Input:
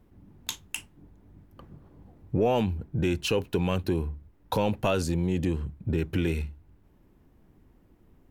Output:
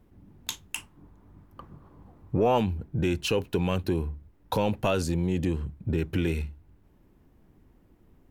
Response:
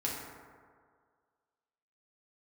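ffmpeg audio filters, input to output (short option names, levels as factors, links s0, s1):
-filter_complex "[0:a]asettb=1/sr,asplit=3[s0][s1][s2];[s0]atrim=end=0.754[s3];[s1]atrim=start=0.75:end=2.58,asetpts=PTS-STARTPTS,afade=t=in:d=0.004:c=qsin,afade=t=out:st=1.826:d=0.004:c=qsin,equalizer=f=1100:w=2:g=9[s4];[s2]atrim=start=2.576[s5];[s3][s4]acrossfade=d=0.004:c1=hsin:c2=qsin[s6];[s6][s5]acrossfade=d=0.004:c1=qsin:c2=hsin"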